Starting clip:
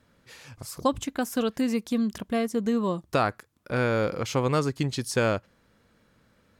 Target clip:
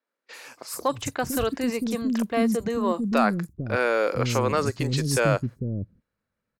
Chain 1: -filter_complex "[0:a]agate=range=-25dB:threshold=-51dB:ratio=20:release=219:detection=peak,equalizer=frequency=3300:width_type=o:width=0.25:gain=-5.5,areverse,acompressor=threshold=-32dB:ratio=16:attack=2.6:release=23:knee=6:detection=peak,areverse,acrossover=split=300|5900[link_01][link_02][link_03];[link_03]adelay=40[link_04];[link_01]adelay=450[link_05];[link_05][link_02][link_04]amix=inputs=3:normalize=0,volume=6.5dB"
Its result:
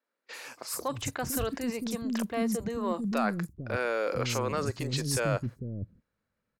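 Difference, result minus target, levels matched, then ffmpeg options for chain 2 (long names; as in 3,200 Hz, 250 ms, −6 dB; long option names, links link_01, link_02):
downward compressor: peak gain reduction +8.5 dB
-filter_complex "[0:a]agate=range=-25dB:threshold=-51dB:ratio=20:release=219:detection=peak,equalizer=frequency=3300:width_type=o:width=0.25:gain=-5.5,areverse,acompressor=threshold=-23dB:ratio=16:attack=2.6:release=23:knee=6:detection=peak,areverse,acrossover=split=300|5900[link_01][link_02][link_03];[link_03]adelay=40[link_04];[link_01]adelay=450[link_05];[link_05][link_02][link_04]amix=inputs=3:normalize=0,volume=6.5dB"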